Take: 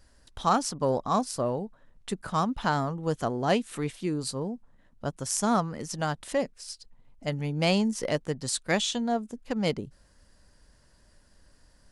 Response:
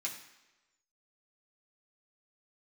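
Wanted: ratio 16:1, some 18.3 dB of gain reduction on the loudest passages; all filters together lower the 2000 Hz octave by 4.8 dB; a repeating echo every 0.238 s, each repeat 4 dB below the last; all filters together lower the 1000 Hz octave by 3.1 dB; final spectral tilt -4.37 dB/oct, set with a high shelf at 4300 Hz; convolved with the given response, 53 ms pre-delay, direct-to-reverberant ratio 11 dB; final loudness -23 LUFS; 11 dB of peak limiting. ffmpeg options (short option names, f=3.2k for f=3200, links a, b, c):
-filter_complex "[0:a]equalizer=f=1k:t=o:g=-3,equalizer=f=2k:t=o:g=-6,highshelf=f=4.3k:g=3.5,acompressor=threshold=-39dB:ratio=16,alimiter=level_in=10dB:limit=-24dB:level=0:latency=1,volume=-10dB,aecho=1:1:238|476|714|952|1190|1428|1666|1904|2142:0.631|0.398|0.25|0.158|0.0994|0.0626|0.0394|0.0249|0.0157,asplit=2[a][b];[1:a]atrim=start_sample=2205,adelay=53[c];[b][c]afir=irnorm=-1:irlink=0,volume=-12dB[d];[a][d]amix=inputs=2:normalize=0,volume=20.5dB"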